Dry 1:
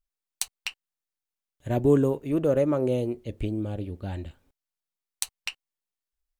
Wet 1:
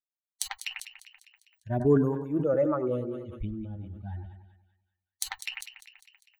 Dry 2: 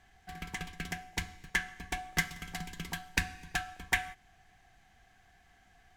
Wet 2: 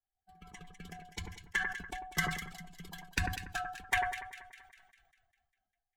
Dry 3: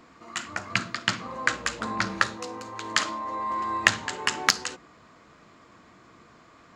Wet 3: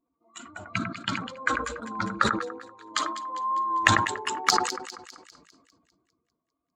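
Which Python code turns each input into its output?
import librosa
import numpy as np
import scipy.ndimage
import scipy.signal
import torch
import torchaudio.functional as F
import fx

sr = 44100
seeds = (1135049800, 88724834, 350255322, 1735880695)

y = fx.bin_expand(x, sr, power=2.0)
y = fx.dynamic_eq(y, sr, hz=1200.0, q=2.7, threshold_db=-45.0, ratio=4.0, max_db=6)
y = fx.echo_split(y, sr, split_hz=1700.0, low_ms=96, high_ms=200, feedback_pct=52, wet_db=-12)
y = fx.wow_flutter(y, sr, seeds[0], rate_hz=2.1, depth_cents=23.0)
y = fx.sustainer(y, sr, db_per_s=61.0)
y = y * 10.0 ** (-1.0 / 20.0)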